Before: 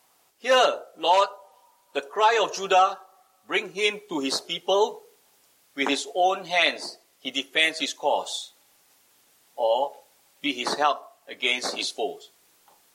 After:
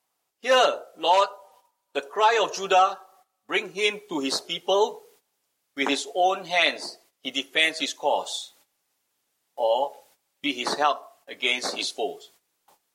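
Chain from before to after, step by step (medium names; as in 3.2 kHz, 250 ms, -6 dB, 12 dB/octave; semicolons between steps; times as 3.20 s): gate -56 dBFS, range -14 dB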